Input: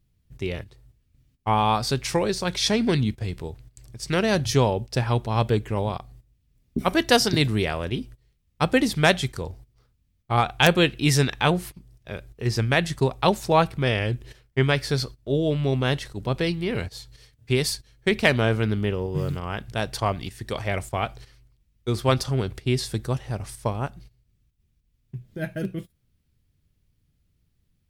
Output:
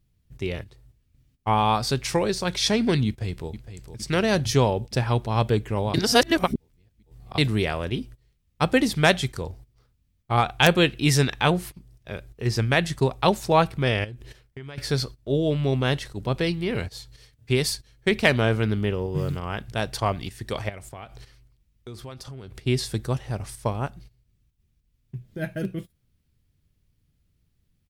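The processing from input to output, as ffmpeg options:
-filter_complex "[0:a]asplit=2[a][b];[b]afade=t=in:st=3.07:d=0.01,afade=t=out:st=3.49:d=0.01,aecho=0:1:460|920|1380|1840|2300|2760|3220|3680:0.266073|0.172947|0.112416|0.0730702|0.0474956|0.0308721|0.0200669|0.0130435[c];[a][c]amix=inputs=2:normalize=0,asettb=1/sr,asplit=3[d][e][f];[d]atrim=end=14.044[g];[e]atrim=start=14.04:end=14.78,asetpts=PTS-STARTPTS,afade=t=in:d=0.004:c=qsin,afade=t=out:st=0.736:d=0.004:c=qsin,acompressor=threshold=-34dB:ratio=12:attack=3.2:release=140:knee=1:detection=peak[h];[f]atrim=start=14.776[i];[g][h]acrossfade=d=0.004:c1=hsin:c2=qsin[j];[j][i]acrossfade=d=0.004:c1=qsin:c2=hsin,asettb=1/sr,asplit=3[k][l][m];[k]atrim=end=20.694[n];[l]atrim=start=20.69:end=22.59,asetpts=PTS-STARTPTS,afade=t=in:d=0.004:c=qsin,afade=t=out:st=1.896:d=0.004:c=qsin,acompressor=threshold=-37dB:ratio=5:attack=3.2:release=140:knee=1:detection=peak[o];[m]atrim=start=22.586[p];[n][o]acrossfade=d=0.004:c1=hsin:c2=qsin[q];[q][p]acrossfade=d=0.004:c1=qsin:c2=hsin,asplit=3[r][s][t];[r]atrim=end=5.942[u];[s]atrim=start=5.938:end=7.382,asetpts=PTS-STARTPTS,areverse[v];[t]atrim=start=7.378[w];[u][v]acrossfade=d=0.004:c1=hsin:c2=hsin[x];[x][w]acrossfade=d=0.004:c1=hsin:c2=hsin"

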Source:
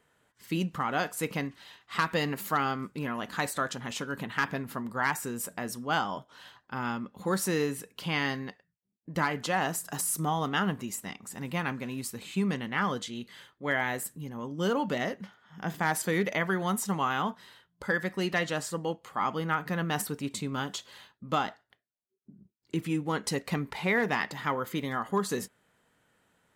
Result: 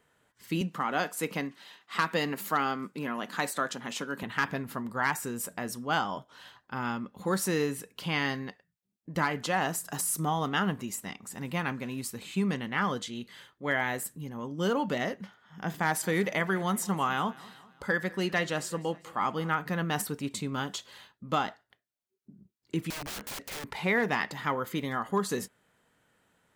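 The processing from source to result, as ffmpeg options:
-filter_complex "[0:a]asettb=1/sr,asplit=3[a][b][c];[a]atrim=end=0.614[d];[b]atrim=start=0.61:end=4.23,asetpts=PTS-STARTPTS,afade=t=in:d=0.004:c=qsin,afade=t=out:st=3.616:d=0.004:c=qsin,highpass=f=160:w=0.5412,highpass=f=160:w=1.3066[e];[c]atrim=start=4.226[f];[d][e]acrossfade=d=0.004:c1=hsin:c2=qsin[g];[g][f]acrossfade=d=0.004:c1=qsin:c2=hsin,asettb=1/sr,asplit=3[h][i][j];[h]atrim=end=15.834[k];[i]atrim=start=15.83:end=19.54,asetpts=PTS-STARTPTS,afade=t=in:d=0.004:c=qsin,afade=t=out:st=3.706:d=0.004:c=qsin,aecho=1:1:199|398|597|796:0.0841|0.0446|0.0236|0.0125,atrim=end_sample=163611[l];[j]atrim=start=19.536[m];[k][l]acrossfade=d=0.004:c1=hsin:c2=qsin[n];[n][m]acrossfade=d=0.004:c1=qsin:c2=hsin,asettb=1/sr,asplit=3[o][p][q];[o]atrim=end=22.904[r];[p]atrim=start=22.9:end=23.64,asetpts=PTS-STARTPTS,afade=t=in:d=0.004:c=qsin,afade=t=out:st=0.736:d=0.004:c=qsin,aeval=exprs='(mod(47.3*val(0)+1,2)-1)/47.3':c=same[s];[q]atrim=start=23.636[t];[r][s]acrossfade=d=0.004:c1=hsin:c2=qsin[u];[u][t]acrossfade=d=0.004:c1=qsin:c2=hsin"

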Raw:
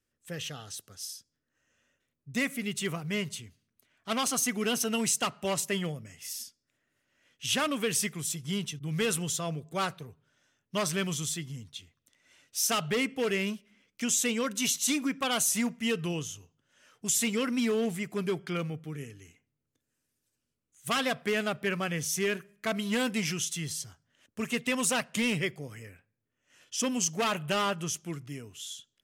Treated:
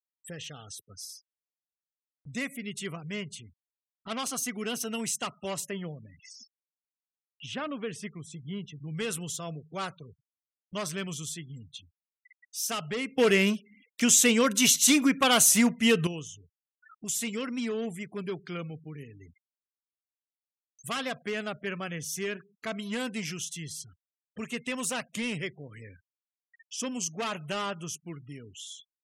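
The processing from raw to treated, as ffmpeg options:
-filter_complex "[0:a]asettb=1/sr,asplit=3[a][b][c];[a]atrim=end=5.714[d];[b]atrim=start=5.71:end=8.95,asetpts=PTS-STARTPTS,afade=t=in:d=0.004:c=qsin,afade=t=out:st=3.236:d=0.004:c=qsin,lowpass=f=1.6k:p=1[e];[c]atrim=start=8.946[f];[d][e]acrossfade=d=0.004:c1=hsin:c2=qsin[g];[g][f]acrossfade=d=0.004:c1=qsin:c2=hsin,asplit=3[h][i][j];[h]atrim=end=13.182[k];[i]atrim=start=13.178:end=16.072,asetpts=PTS-STARTPTS,volume=11dB[l];[j]atrim=start=16.068[m];[k][l]acrossfade=d=0.004:c1=hsin:c2=hsin[n];[n][m]acrossfade=d=0.004:c1=hsin:c2=hsin,afftfilt=real='re*gte(hypot(re,im),0.00501)':imag='im*gte(hypot(re,im),0.00501)':win_size=1024:overlap=0.75,acompressor=mode=upward:threshold=-34dB:ratio=2.5,volume=-4dB"

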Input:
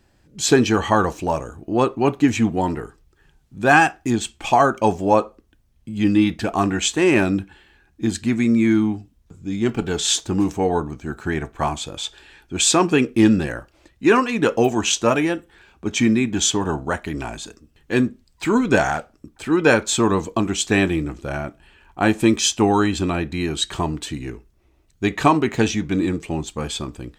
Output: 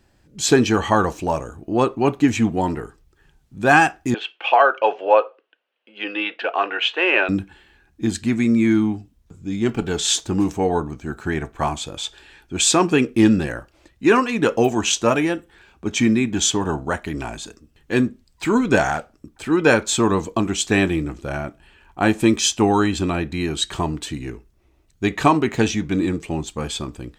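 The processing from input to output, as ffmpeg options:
-filter_complex "[0:a]asettb=1/sr,asplit=3[a][b][c];[a]atrim=end=4.144[d];[b]atrim=start=4.14:end=7.29,asetpts=PTS-STARTPTS,afade=t=in:d=0.004:c=qsin,afade=t=out:st=3.146:d=0.004:c=qsin,highpass=f=460:w=0.5412,highpass=f=460:w=1.3066,equalizer=f=500:t=q:w=4:g=6,equalizer=f=1.5k:t=q:w=4:g=6,equalizer=f=2.8k:t=q:w=4:g=10,lowpass=f=3.5k:w=0.5412,lowpass=f=3.5k:w=1.3066[e];[c]atrim=start=7.286[f];[d][e]acrossfade=d=0.004:c1=hsin:c2=qsin[g];[g][f]acrossfade=d=0.004:c1=qsin:c2=hsin"

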